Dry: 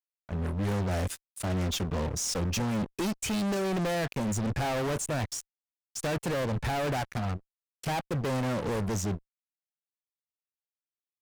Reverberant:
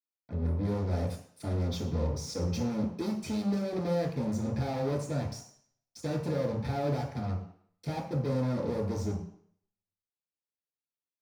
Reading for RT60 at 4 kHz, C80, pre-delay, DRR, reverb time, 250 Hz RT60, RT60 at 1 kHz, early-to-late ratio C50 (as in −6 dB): 0.60 s, 10.0 dB, 3 ms, −3.5 dB, 0.60 s, 0.55 s, 0.65 s, 6.0 dB